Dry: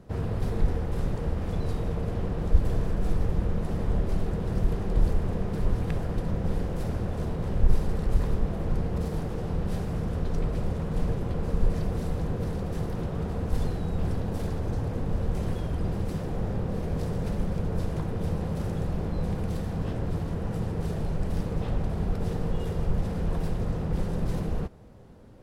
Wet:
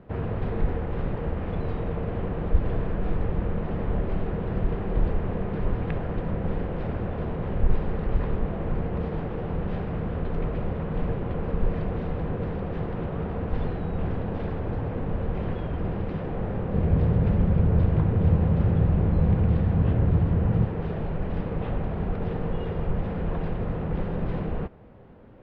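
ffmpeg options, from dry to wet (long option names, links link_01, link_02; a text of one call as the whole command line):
ffmpeg -i in.wav -filter_complex "[0:a]asettb=1/sr,asplit=3[link_01][link_02][link_03];[link_01]atrim=end=16.744[link_04];[link_02]atrim=start=16.74:end=20.65,asetpts=PTS-STARTPTS,afade=type=in:duration=0.004:curve=qsin,afade=type=out:start_time=3.906:duration=0.004:curve=qsin,equalizer=frequency=85:width_type=o:width=2.4:gain=11.5[link_05];[link_03]atrim=start=20.646[link_06];[link_04][link_05]acrossfade=duration=0.004:curve1=hsin:curve2=qsin[link_07];[link_07][link_06]acrossfade=duration=0.004:curve1=qsin:curve2=hsin,lowpass=frequency=2900:width=0.5412,lowpass=frequency=2900:width=1.3066,lowshelf=frequency=190:gain=-5,volume=3.5dB" out.wav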